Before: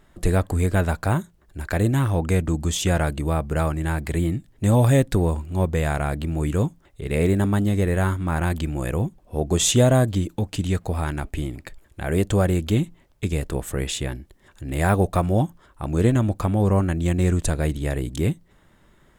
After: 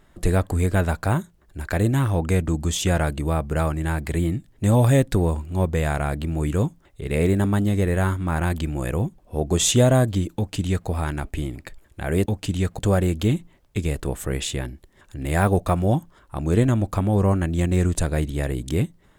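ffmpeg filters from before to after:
ffmpeg -i in.wav -filter_complex "[0:a]asplit=3[link_01][link_02][link_03];[link_01]atrim=end=12.262[link_04];[link_02]atrim=start=10.358:end=10.892[link_05];[link_03]atrim=start=12.258[link_06];[link_04][link_05]acrossfade=duration=0.004:curve1=hsin:curve2=hsin[link_07];[link_07][link_06]acrossfade=duration=0.004:curve1=hsin:curve2=hsin" out.wav

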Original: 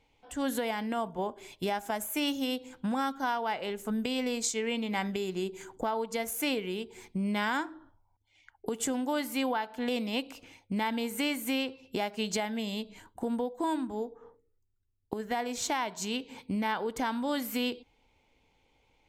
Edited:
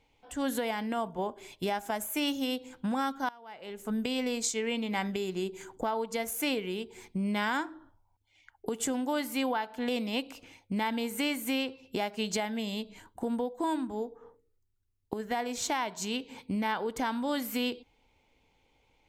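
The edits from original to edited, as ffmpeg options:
ffmpeg -i in.wav -filter_complex "[0:a]asplit=2[link_01][link_02];[link_01]atrim=end=3.29,asetpts=PTS-STARTPTS,afade=type=out:start_time=3.286:duration=0.004:curve=hsin:silence=0.0841395[link_03];[link_02]atrim=start=3.29,asetpts=PTS-STARTPTS,afade=type=in:duration=0.64:curve=qua:silence=0.0841395[link_04];[link_03][link_04]concat=n=2:v=0:a=1" out.wav

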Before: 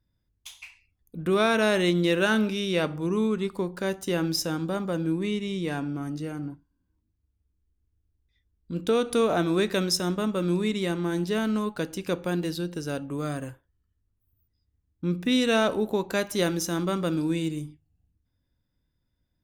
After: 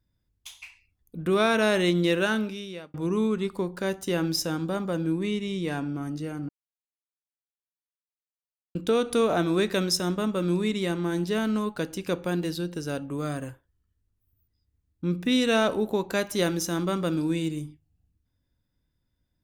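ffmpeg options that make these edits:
ffmpeg -i in.wav -filter_complex "[0:a]asplit=4[link_01][link_02][link_03][link_04];[link_01]atrim=end=2.94,asetpts=PTS-STARTPTS,afade=type=out:start_time=2.1:duration=0.84[link_05];[link_02]atrim=start=2.94:end=6.49,asetpts=PTS-STARTPTS,afade=type=in:duration=0.004:curve=hsin,afade=type=out:start_time=3.546:duration=0.004:curve=hsin[link_06];[link_03]atrim=start=6.49:end=8.75,asetpts=PTS-STARTPTS,volume=0[link_07];[link_04]atrim=start=8.75,asetpts=PTS-STARTPTS,afade=type=in:duration=0.004:curve=hsin[link_08];[link_05][link_06][link_07][link_08]concat=n=4:v=0:a=1" out.wav

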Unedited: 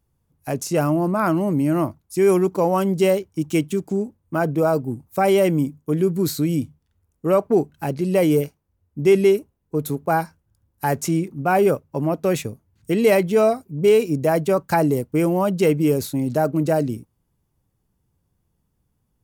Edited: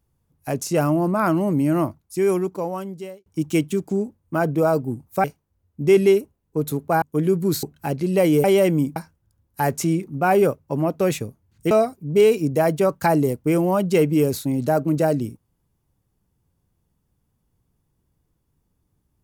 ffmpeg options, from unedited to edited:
ffmpeg -i in.wav -filter_complex "[0:a]asplit=8[link_01][link_02][link_03][link_04][link_05][link_06][link_07][link_08];[link_01]atrim=end=3.26,asetpts=PTS-STARTPTS,afade=type=out:start_time=1.8:duration=1.46[link_09];[link_02]atrim=start=3.26:end=5.242,asetpts=PTS-STARTPTS,afade=type=in:duration=0.004:curve=hsin[link_10];[link_03]atrim=start=8.418:end=10.202[link_11];[link_04]atrim=start=5.758:end=6.372[link_12];[link_05]atrim=start=7.608:end=8.422[link_13];[link_06]atrim=start=5.238:end=5.762[link_14];[link_07]atrim=start=10.198:end=12.952[link_15];[link_08]atrim=start=13.388[link_16];[link_09][link_10]concat=n=2:v=0:a=1[link_17];[link_17][link_11]acrossfade=duration=0.004:curve1=hsin:curve2=hsin[link_18];[link_18][link_12]acrossfade=duration=0.004:curve1=hsin:curve2=hsin[link_19];[link_19][link_13]acrossfade=duration=0.004:curve1=hsin:curve2=hsin[link_20];[link_20][link_14]acrossfade=duration=0.004:curve1=hsin:curve2=hsin[link_21];[link_21][link_15]acrossfade=duration=0.004:curve1=hsin:curve2=hsin[link_22];[link_22][link_16]acrossfade=duration=0.004:curve1=hsin:curve2=hsin" out.wav

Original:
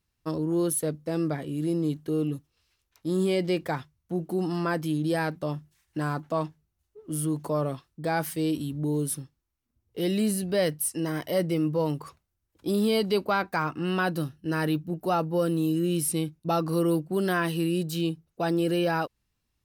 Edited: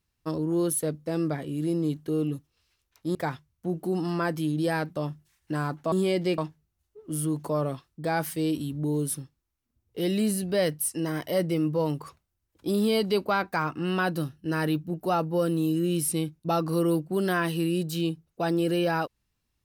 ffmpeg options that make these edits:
ffmpeg -i in.wav -filter_complex "[0:a]asplit=4[link_01][link_02][link_03][link_04];[link_01]atrim=end=3.152[link_05];[link_02]atrim=start=3.608:end=6.382[link_06];[link_03]atrim=start=3.148:end=3.612[link_07];[link_04]atrim=start=6.378[link_08];[link_05][link_06]acrossfade=duration=0.004:curve1=hsin:curve2=hsin[link_09];[link_09][link_07]acrossfade=duration=0.004:curve1=hsin:curve2=hsin[link_10];[link_10][link_08]acrossfade=duration=0.004:curve1=hsin:curve2=hsin" out.wav

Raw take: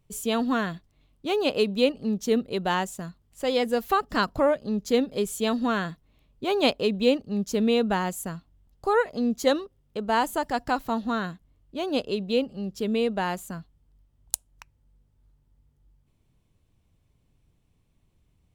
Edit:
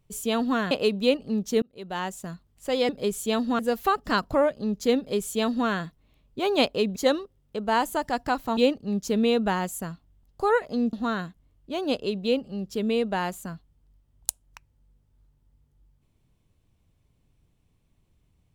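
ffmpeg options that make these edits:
ffmpeg -i in.wav -filter_complex "[0:a]asplit=8[link_01][link_02][link_03][link_04][link_05][link_06][link_07][link_08];[link_01]atrim=end=0.712[link_09];[link_02]atrim=start=1.458:end=2.37,asetpts=PTS-STARTPTS,afade=type=out:start_time=0.908:duration=0.004:curve=hsin[link_10];[link_03]atrim=start=2.37:end=3.642,asetpts=PTS-STARTPTS,afade=type=in:duration=0.7[link_11];[link_04]atrim=start=5.028:end=5.732[link_12];[link_05]atrim=start=3.638:end=7.012[link_13];[link_06]atrim=start=9.368:end=10.982[link_14];[link_07]atrim=start=7.008:end=9.372[link_15];[link_08]atrim=start=10.978[link_16];[link_10][link_11]concat=n=2:v=0:a=1[link_17];[link_09][link_17]acrossfade=duration=0.004:curve1=hsin:curve2=hsin[link_18];[link_18][link_12]acrossfade=duration=0.004:curve1=hsin:curve2=hsin[link_19];[link_19][link_13]acrossfade=duration=0.004:curve1=hsin:curve2=hsin[link_20];[link_20][link_14]acrossfade=duration=0.004:curve1=hsin:curve2=hsin[link_21];[link_21][link_15]acrossfade=duration=0.004:curve1=hsin:curve2=hsin[link_22];[link_22][link_16]acrossfade=duration=0.004:curve1=hsin:curve2=hsin" out.wav

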